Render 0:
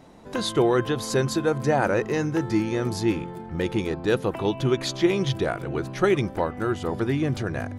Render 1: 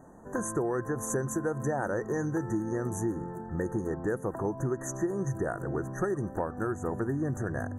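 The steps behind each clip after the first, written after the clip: FFT band-reject 1.9–5.9 kHz; dynamic bell 10 kHz, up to +4 dB, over -51 dBFS, Q 1; compression, threshold -24 dBFS, peak gain reduction 9.5 dB; trim -2.5 dB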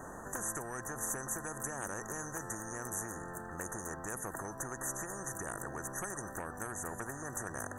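spectrum-flattening compressor 4:1; trim -4.5 dB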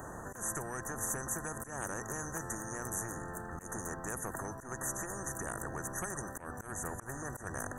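octave divider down 1 oct, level -3 dB; slow attack 114 ms; upward compressor, threshold -55 dBFS; trim +1 dB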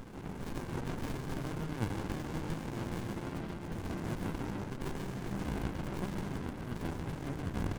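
delay 120 ms -11 dB; reverberation RT60 0.50 s, pre-delay 134 ms, DRR 1 dB; sliding maximum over 65 samples; trim +1 dB

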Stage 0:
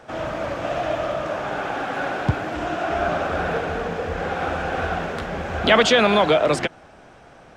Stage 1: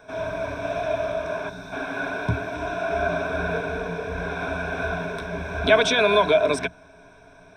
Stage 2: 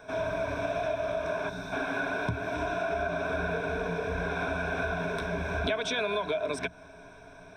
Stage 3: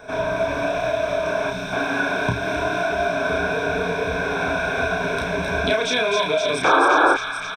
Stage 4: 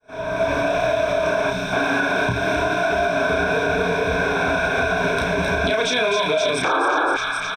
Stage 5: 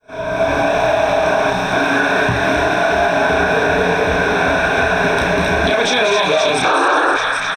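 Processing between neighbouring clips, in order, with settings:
time-frequency box 1.49–1.72 s, 260–3500 Hz -11 dB; rippled EQ curve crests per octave 1.6, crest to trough 16 dB; trim -6 dB
compression 8:1, threshold -27 dBFS, peak gain reduction 15.5 dB
painted sound noise, 6.64–7.14 s, 270–1700 Hz -24 dBFS; doubling 32 ms -3 dB; feedback echo behind a high-pass 261 ms, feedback 81%, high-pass 2.5 kHz, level -3 dB; trim +7 dB
fade-in on the opening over 0.53 s; peak limiter -14.5 dBFS, peak gain reduction 10 dB; trim +3.5 dB
frequency-shifting echo 194 ms, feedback 47%, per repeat +150 Hz, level -8 dB; trim +4.5 dB

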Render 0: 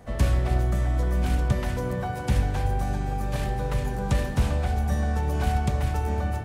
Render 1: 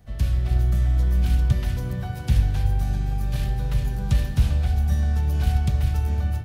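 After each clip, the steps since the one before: graphic EQ 250/500/1000/2000/8000 Hz -7/-11/-11/-6/-8 dB; level rider gain up to 5 dB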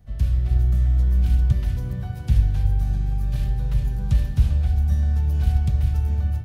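bass shelf 190 Hz +8.5 dB; trim -6 dB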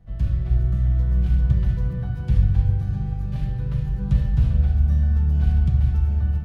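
low-pass 1.9 kHz 6 dB/octave; on a send at -4 dB: reverberation RT60 1.5 s, pre-delay 6 ms

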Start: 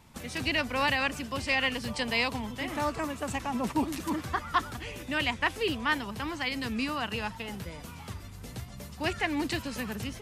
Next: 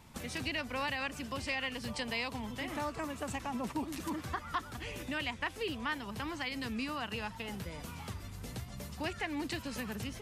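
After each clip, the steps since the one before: compression 2:1, threshold -39 dBFS, peak gain reduction 10 dB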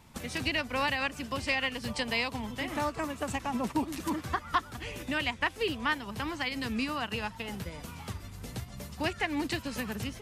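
upward expansion 1.5:1, over -46 dBFS; trim +8 dB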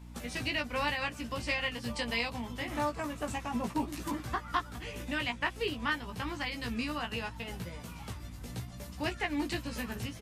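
hum 60 Hz, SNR 14 dB; doubling 17 ms -4 dB; trim -4 dB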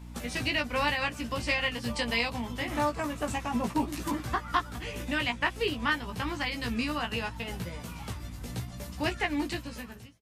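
fade out at the end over 0.99 s; trim +4 dB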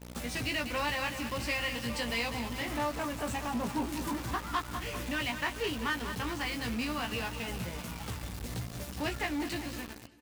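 feedback delay 197 ms, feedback 54%, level -12.5 dB; in parallel at -5 dB: companded quantiser 2-bit; on the sum: trim -8.5 dB

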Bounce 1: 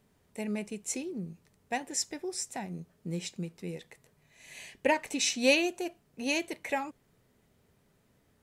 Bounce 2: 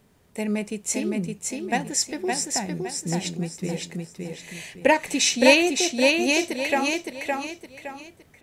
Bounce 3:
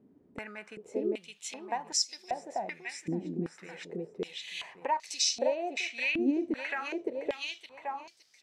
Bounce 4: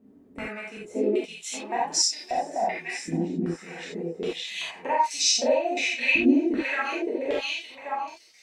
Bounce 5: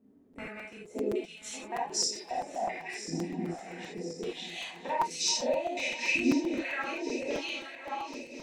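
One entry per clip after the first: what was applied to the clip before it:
feedback delay 564 ms, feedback 34%, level -3.5 dB; trim +8 dB
compression 5:1, threshold -28 dBFS, peak gain reduction 16.5 dB; step-sequenced band-pass 2.6 Hz 290–5000 Hz; trim +8.5 dB
gated-style reverb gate 110 ms flat, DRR -6.5 dB
backward echo that repeats 517 ms, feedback 71%, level -13.5 dB; crackling interface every 0.13 s, samples 256, repeat, from 0.33 s; trim -7 dB

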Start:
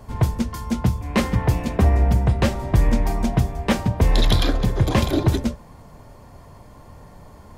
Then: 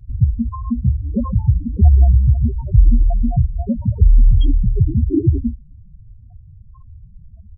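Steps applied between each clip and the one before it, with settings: loudest bins only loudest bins 4; wow and flutter 23 cents; comb 2.7 ms, depth 37%; trim +5.5 dB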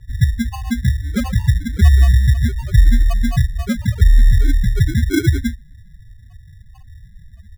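sample-and-hold 24×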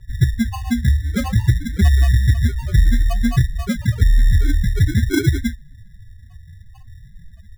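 flange 0.55 Hz, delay 5.2 ms, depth 8.6 ms, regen +50%; saturation -8 dBFS, distortion -22 dB; trim +4.5 dB

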